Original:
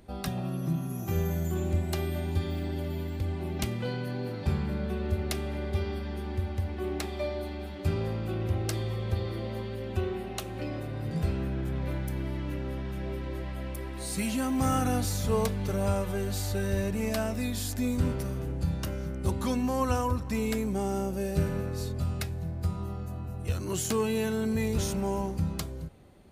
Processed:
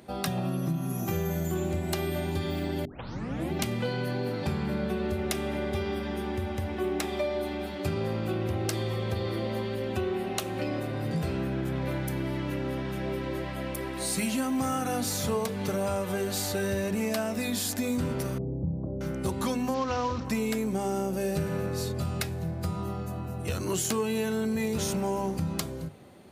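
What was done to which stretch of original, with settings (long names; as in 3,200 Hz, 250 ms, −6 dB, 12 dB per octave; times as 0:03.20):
0:02.85: tape start 0.67 s
0:05.16–0:07.64: notch filter 4,400 Hz, Q 11
0:18.38–0:19.01: Gaussian smoothing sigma 14 samples
0:19.74–0:20.25: variable-slope delta modulation 32 kbit/s
whole clip: high-pass filter 130 Hz 12 dB per octave; mains-hum notches 50/100/150/200/250/300/350/400/450 Hz; downward compressor, threshold −32 dBFS; level +6.5 dB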